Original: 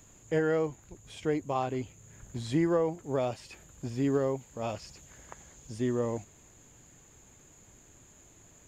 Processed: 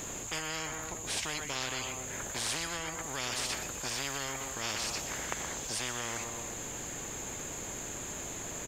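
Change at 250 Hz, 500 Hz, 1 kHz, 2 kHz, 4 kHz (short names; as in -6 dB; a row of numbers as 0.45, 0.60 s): -12.0, -11.5, -1.5, +7.0, +13.5 dB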